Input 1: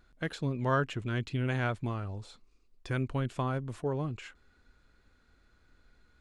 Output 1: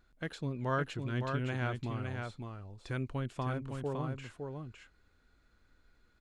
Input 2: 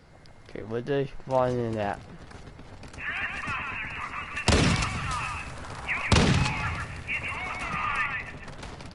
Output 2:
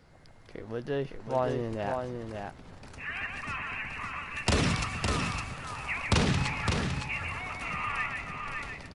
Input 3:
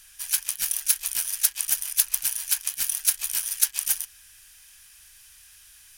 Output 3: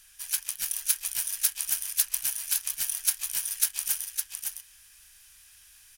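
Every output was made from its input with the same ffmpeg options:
-af "aecho=1:1:560:0.562,volume=-4.5dB"

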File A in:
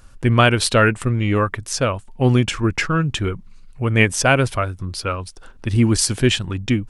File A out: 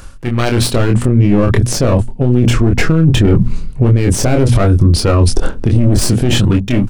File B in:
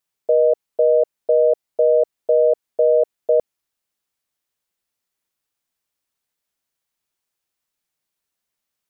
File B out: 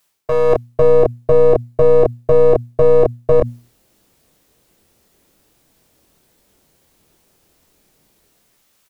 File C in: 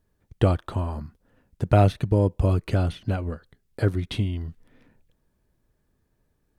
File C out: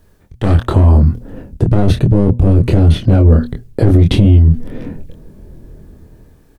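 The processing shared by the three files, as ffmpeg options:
-filter_complex "[0:a]aeval=exprs='clip(val(0),-1,0.0708)':c=same,areverse,acompressor=threshold=-32dB:ratio=10,areverse,bandreject=f=60:t=h:w=6,bandreject=f=120:t=h:w=6,bandreject=f=180:t=h:w=6,bandreject=f=240:t=h:w=6,asplit=2[a][b];[b]adelay=25,volume=-4.5dB[c];[a][c]amix=inputs=2:normalize=0,acrossover=split=570[d][e];[d]dynaudnorm=f=160:g=9:m=14dB[f];[f][e]amix=inputs=2:normalize=0,alimiter=level_in=20dB:limit=-1dB:release=50:level=0:latency=1,volume=-1dB"

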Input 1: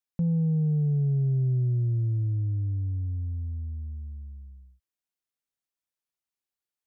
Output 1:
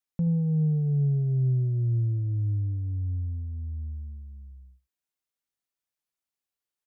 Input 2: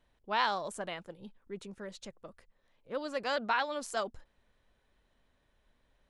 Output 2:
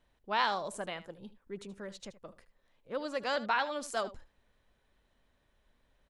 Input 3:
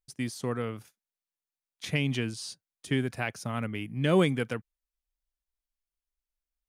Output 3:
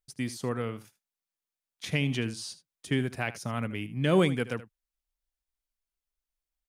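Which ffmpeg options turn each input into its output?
-af "aecho=1:1:77:0.158"

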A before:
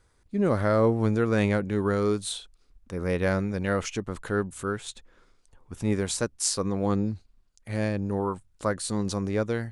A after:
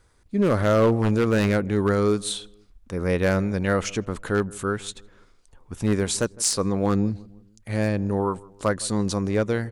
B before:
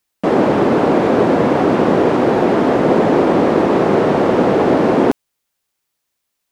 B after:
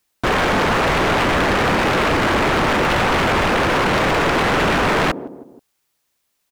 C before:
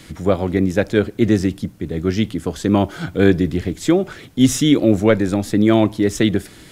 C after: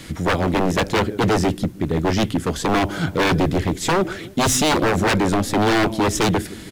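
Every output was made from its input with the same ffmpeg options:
-filter_complex "[0:a]asplit=2[a][b];[b]adelay=159,lowpass=f=1k:p=1,volume=-21.5dB,asplit=2[c][d];[d]adelay=159,lowpass=f=1k:p=1,volume=0.48,asplit=2[e][f];[f]adelay=159,lowpass=f=1k:p=1,volume=0.48[g];[a][c][e][g]amix=inputs=4:normalize=0,aeval=exprs='0.158*(abs(mod(val(0)/0.158+3,4)-2)-1)':c=same,volume=4dB"

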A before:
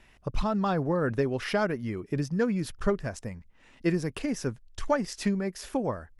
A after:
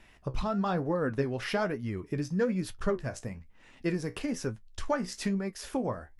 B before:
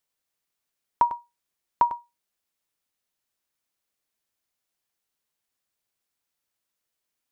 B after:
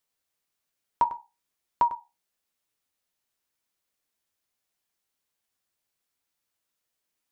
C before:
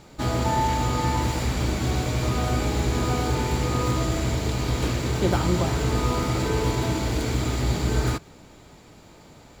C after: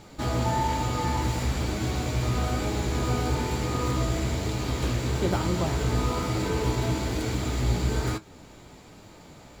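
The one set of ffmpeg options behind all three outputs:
-filter_complex "[0:a]asplit=2[a][b];[b]acompressor=threshold=-36dB:ratio=6,volume=-3dB[c];[a][c]amix=inputs=2:normalize=0,flanger=delay=9.3:depth=7.6:regen=58:speed=1.1:shape=sinusoidal"

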